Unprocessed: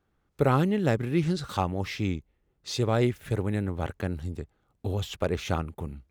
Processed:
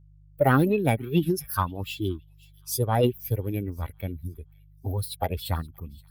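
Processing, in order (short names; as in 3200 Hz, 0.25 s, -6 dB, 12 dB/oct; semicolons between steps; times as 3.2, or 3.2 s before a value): per-bin expansion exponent 2; resonant high shelf 7100 Hz +10.5 dB, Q 3; formant shift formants +5 st; on a send: thin delay 0.524 s, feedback 33%, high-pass 2800 Hz, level -21.5 dB; on the sum: buzz 50 Hz, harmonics 3, -60 dBFS -4 dB/oct; in parallel at -8.5 dB: soft clip -20.5 dBFS, distortion -16 dB; on the sum: gain +3.5 dB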